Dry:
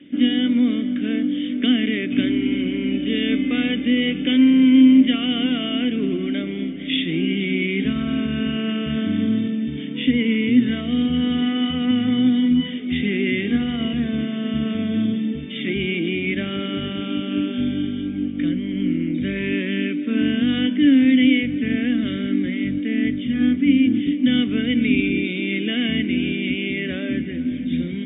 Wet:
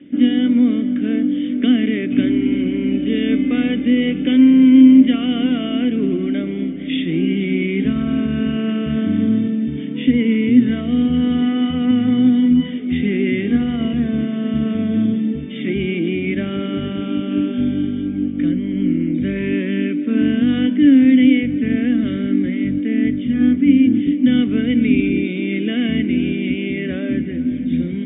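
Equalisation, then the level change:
low-pass filter 2,900 Hz 6 dB per octave
high-shelf EQ 2,000 Hz −7.5 dB
+4.0 dB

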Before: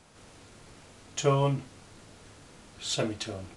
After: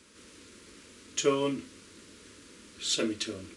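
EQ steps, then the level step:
high-pass filter 73 Hz
phaser with its sweep stopped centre 310 Hz, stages 4
+3.0 dB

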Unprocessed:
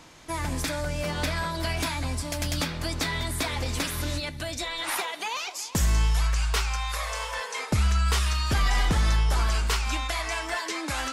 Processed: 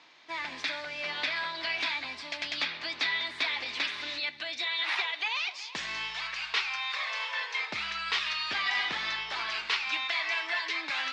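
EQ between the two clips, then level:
tilt shelving filter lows −7 dB, about 1,300 Hz
dynamic equaliser 2,500 Hz, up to +6 dB, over −41 dBFS, Q 0.71
loudspeaker in its box 320–4,000 Hz, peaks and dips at 500 Hz −4 dB, 1,400 Hz −4 dB, 3,000 Hz −4 dB
−4.5 dB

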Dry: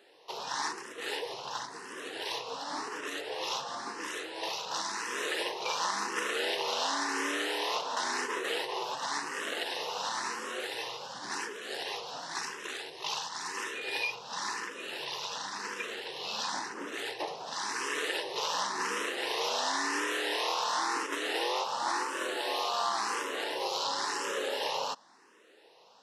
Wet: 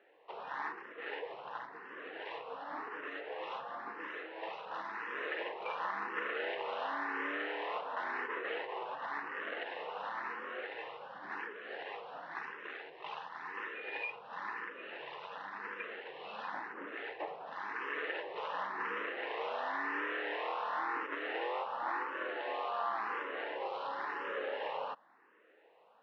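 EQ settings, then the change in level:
loudspeaker in its box 210–2,300 Hz, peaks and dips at 250 Hz −5 dB, 380 Hz −5 dB, 950 Hz −4 dB
−2.5 dB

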